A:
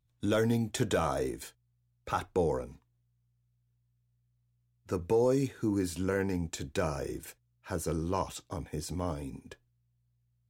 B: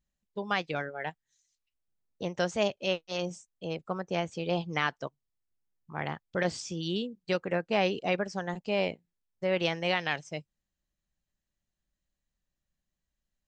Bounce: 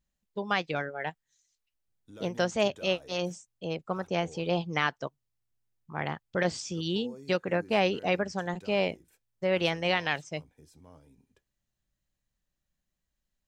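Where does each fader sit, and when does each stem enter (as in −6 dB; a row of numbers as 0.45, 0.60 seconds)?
−20.0, +1.5 decibels; 1.85, 0.00 seconds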